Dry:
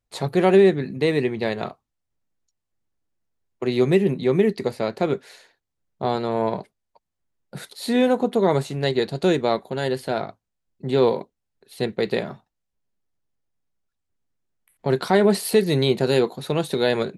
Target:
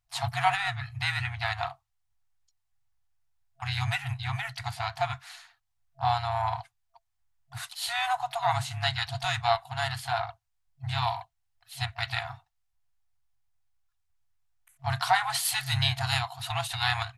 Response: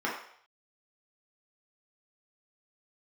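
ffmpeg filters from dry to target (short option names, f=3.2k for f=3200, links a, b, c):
-filter_complex "[0:a]asplit=3[a][b][c];[b]asetrate=33038,aresample=44100,atempo=1.33484,volume=-7dB[d];[c]asetrate=55563,aresample=44100,atempo=0.793701,volume=-17dB[e];[a][d][e]amix=inputs=3:normalize=0,afftfilt=real='re*(1-between(b*sr/4096,130,670))':imag='im*(1-between(b*sr/4096,130,670))':win_size=4096:overlap=0.75"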